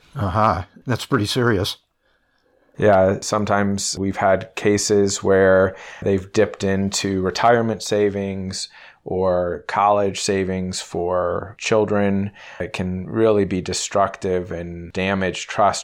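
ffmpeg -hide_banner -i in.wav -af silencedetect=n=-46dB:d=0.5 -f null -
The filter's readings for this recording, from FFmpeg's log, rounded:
silence_start: 1.77
silence_end: 2.69 | silence_duration: 0.92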